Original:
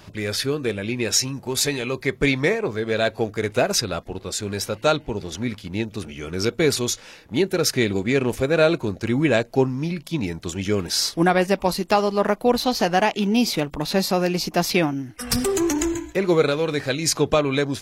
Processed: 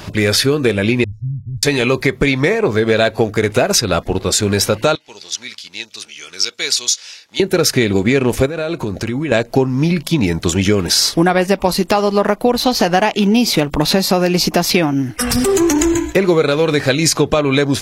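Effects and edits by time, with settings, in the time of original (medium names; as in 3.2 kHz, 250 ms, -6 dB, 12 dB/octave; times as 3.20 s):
1.04–1.63 s: inverse Chebyshev low-pass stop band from 580 Hz, stop band 70 dB
4.95–7.40 s: band-pass filter 5.2 kHz, Q 1.4
8.46–9.32 s: compression 16:1, threshold -30 dBFS
whole clip: compression, threshold -24 dBFS; loudness maximiser +15 dB; trim -1 dB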